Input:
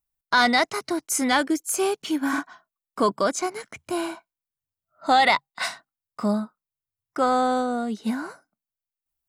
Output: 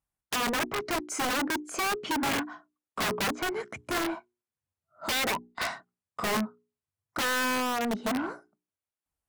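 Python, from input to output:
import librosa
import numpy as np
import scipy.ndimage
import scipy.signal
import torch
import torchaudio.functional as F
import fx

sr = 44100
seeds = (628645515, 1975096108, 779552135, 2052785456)

y = scipy.signal.sosfilt(scipy.signal.butter(2, 8900.0, 'lowpass', fs=sr, output='sos'), x)
y = fx.peak_eq(y, sr, hz=4300.0, db=-9.5, octaves=1.9)
y = fx.hum_notches(y, sr, base_hz=60, count=7)
y = fx.env_lowpass_down(y, sr, base_hz=670.0, full_db=-18.5)
y = (np.mod(10.0 ** (22.5 / 20.0) * y + 1.0, 2.0) - 1.0) / 10.0 ** (22.5 / 20.0)
y = scipy.signal.sosfilt(scipy.signal.butter(2, 45.0, 'highpass', fs=sr, output='sos'), y)
y = 10.0 ** (-30.0 / 20.0) * np.tanh(y / 10.0 ** (-30.0 / 20.0))
y = y * librosa.db_to_amplitude(4.5)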